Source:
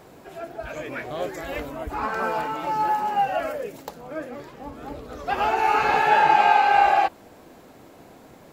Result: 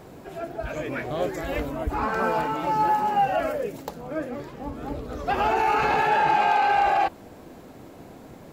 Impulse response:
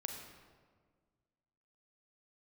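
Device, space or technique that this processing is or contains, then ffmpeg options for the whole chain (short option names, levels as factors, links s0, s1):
clipper into limiter: -af "lowshelf=f=380:g=7,asoftclip=type=hard:threshold=0.376,alimiter=limit=0.2:level=0:latency=1:release=14"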